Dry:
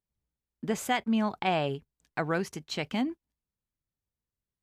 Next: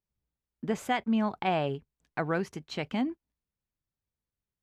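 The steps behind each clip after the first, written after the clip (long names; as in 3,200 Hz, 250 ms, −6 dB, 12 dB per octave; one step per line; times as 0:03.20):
high-shelf EQ 4,200 Hz −10 dB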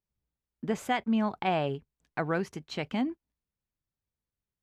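no processing that can be heard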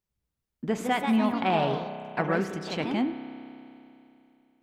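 delay with pitch and tempo change per echo 235 ms, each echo +2 semitones, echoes 3, each echo −6 dB
spring reverb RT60 2.9 s, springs 31 ms, chirp 65 ms, DRR 9.5 dB
level +2 dB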